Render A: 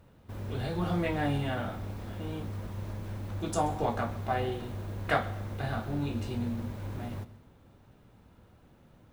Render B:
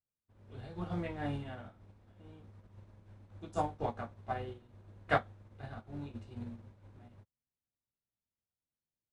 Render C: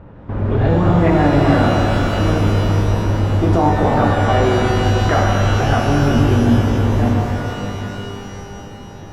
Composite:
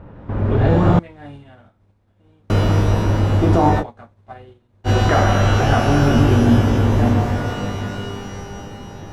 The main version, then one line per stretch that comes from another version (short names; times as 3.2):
C
0.99–2.5 from B
3.81–4.87 from B, crossfade 0.06 s
not used: A